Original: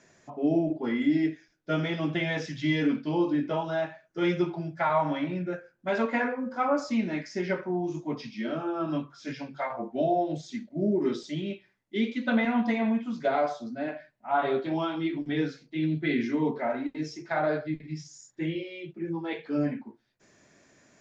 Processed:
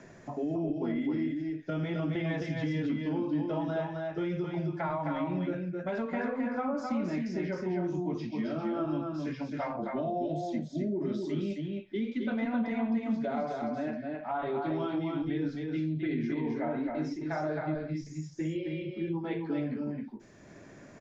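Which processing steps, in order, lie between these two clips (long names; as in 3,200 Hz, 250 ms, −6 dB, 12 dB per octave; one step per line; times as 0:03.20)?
spectral tilt −2 dB per octave
in parallel at −3 dB: downward compressor, threshold −30 dBFS, peak gain reduction 13 dB
on the sum: brickwall limiter −18 dBFS, peak gain reduction 8 dB
single-tap delay 264 ms −4 dB
multiband upward and downward compressor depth 40%
level −7.5 dB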